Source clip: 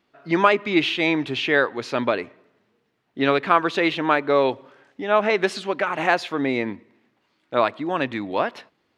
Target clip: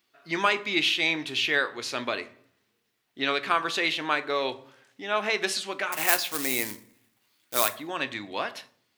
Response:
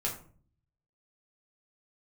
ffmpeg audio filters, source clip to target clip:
-filter_complex "[0:a]asettb=1/sr,asplit=3[s0][s1][s2];[s0]atrim=end=5.924[s3];[s1]atrim=start=5.92:end=7.74,asetpts=PTS-STARTPTS,afade=t=in:d=0.004:c=qsin,afade=t=out:st=1.816:d=0.004:c=qsin,acrusher=bits=3:mode=log:mix=0:aa=0.000001[s4];[s2]atrim=start=7.736[s5];[s3][s4]acrossfade=d=0.004:c1=hsin:c2=qsin[s6];[s6][s5]acrossfade=d=0.004:c1=qsin:c2=hsin,asplit=2[s7][s8];[1:a]atrim=start_sample=2205,asetrate=37044,aresample=44100[s9];[s8][s9]afir=irnorm=-1:irlink=0,volume=0.224[s10];[s7][s10]amix=inputs=2:normalize=0,crystalizer=i=8.5:c=0,volume=0.211"

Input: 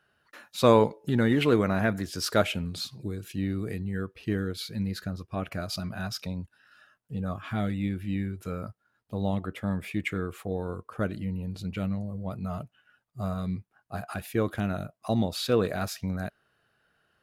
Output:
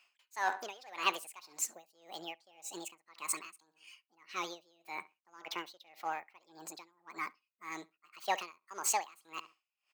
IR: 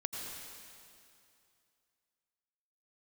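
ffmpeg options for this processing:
-filter_complex "[0:a]asplit=2[s0][s1];[s1]volume=16.8,asoftclip=hard,volume=0.0596,volume=0.422[s2];[s0][s2]amix=inputs=2:normalize=0,highpass=550,asplit=2[s3][s4];[s4]adelay=118,lowpass=f=1800:p=1,volume=0.133,asplit=2[s5][s6];[s6]adelay=118,lowpass=f=1800:p=1,volume=0.35,asplit=2[s7][s8];[s8]adelay=118,lowpass=f=1800:p=1,volume=0.35[s9];[s3][s5][s7][s9]amix=inputs=4:normalize=0,asetrate=76440,aresample=44100,aeval=exprs='val(0)*pow(10,-28*(0.5-0.5*cos(2*PI*1.8*n/s))/20)':c=same"

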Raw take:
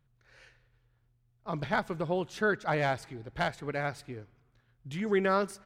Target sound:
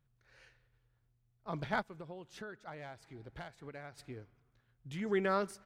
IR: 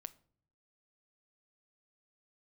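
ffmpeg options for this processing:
-filter_complex "[0:a]asplit=3[s0][s1][s2];[s0]afade=t=out:st=1.81:d=0.02[s3];[s1]acompressor=threshold=0.01:ratio=6,afade=t=in:st=1.81:d=0.02,afade=t=out:st=3.97:d=0.02[s4];[s2]afade=t=in:st=3.97:d=0.02[s5];[s3][s4][s5]amix=inputs=3:normalize=0,volume=0.562"

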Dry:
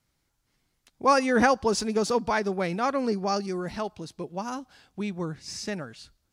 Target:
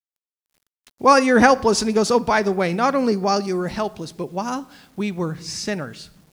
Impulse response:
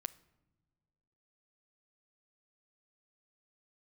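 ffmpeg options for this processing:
-filter_complex "[0:a]asplit=2[s0][s1];[1:a]atrim=start_sample=2205[s2];[s1][s2]afir=irnorm=-1:irlink=0,volume=6.31[s3];[s0][s3]amix=inputs=2:normalize=0,acrusher=bits=7:mix=0:aa=0.000001,volume=0.398"

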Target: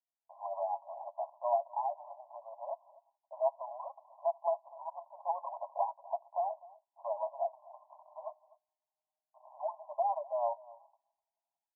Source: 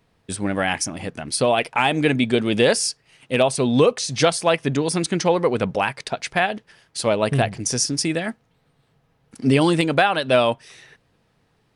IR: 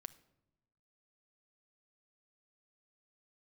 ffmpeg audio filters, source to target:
-filter_complex "[0:a]agate=range=0.0282:threshold=0.00501:ratio=16:detection=peak,aecho=1:1:7.3:0.58,dynaudnorm=f=210:g=3:m=4.73,alimiter=limit=0.266:level=0:latency=1:release=389,tremolo=f=11:d=0.4,acrusher=bits=4:mode=log:mix=0:aa=0.000001,asettb=1/sr,asplit=3[s0][s1][s2];[s0]atrim=end=7.514[s3];[s1]atrim=start=7.51:end=9.85,asetpts=PTS-STARTPTS,afade=t=in:d=0.004:c=qsin,afade=t=out:st=2.336:d=0.004:c=qsin,afreqshift=-190[s4];[s2]atrim=start=9.846[s5];[s3][s4]acrossfade=d=0.004:c1=hsin:c2=qsin[s6];[s6][s5]acrossfade=d=0.004:c1=qsin:c2=hsin,asoftclip=type=tanh:threshold=0.126,asuperpass=centerf=790:order=20:qfactor=1.7,aecho=1:1:250:0.0841,volume=0.75"

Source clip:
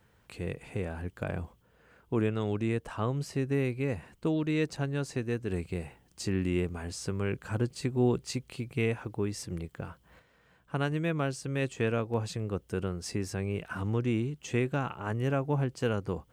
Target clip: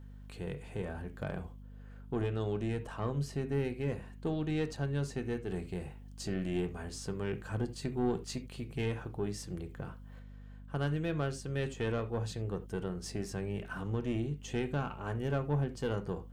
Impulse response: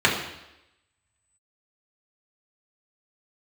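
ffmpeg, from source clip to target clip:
-filter_complex "[0:a]aeval=exprs='(tanh(12.6*val(0)+0.3)-tanh(0.3))/12.6':c=same,asplit=2[s0][s1];[1:a]atrim=start_sample=2205,atrim=end_sample=3969[s2];[s1][s2]afir=irnorm=-1:irlink=0,volume=0.0596[s3];[s0][s3]amix=inputs=2:normalize=0,aeval=exprs='val(0)+0.00631*(sin(2*PI*50*n/s)+sin(2*PI*2*50*n/s)/2+sin(2*PI*3*50*n/s)/3+sin(2*PI*4*50*n/s)/4+sin(2*PI*5*50*n/s)/5)':c=same,volume=0.631"

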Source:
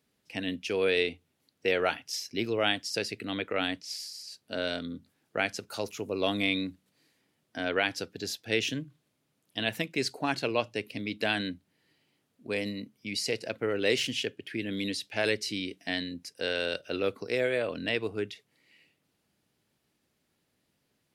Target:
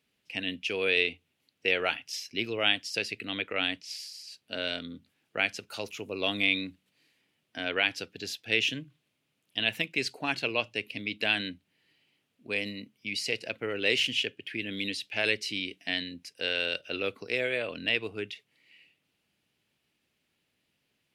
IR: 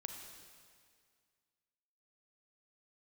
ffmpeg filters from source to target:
-af "equalizer=f=2700:w=1.4:g=10,volume=0.631"

